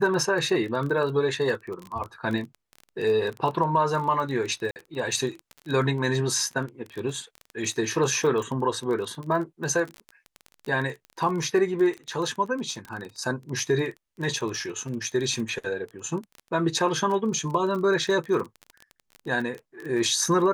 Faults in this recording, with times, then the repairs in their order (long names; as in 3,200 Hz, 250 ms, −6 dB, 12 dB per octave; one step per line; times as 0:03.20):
surface crackle 22 per second −30 dBFS
0:04.71–0:04.76: drop-out 49 ms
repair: click removal
repair the gap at 0:04.71, 49 ms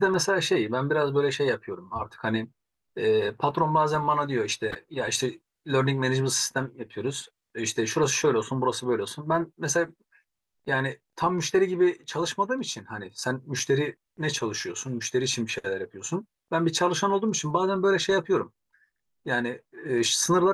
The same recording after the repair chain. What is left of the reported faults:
none of them is left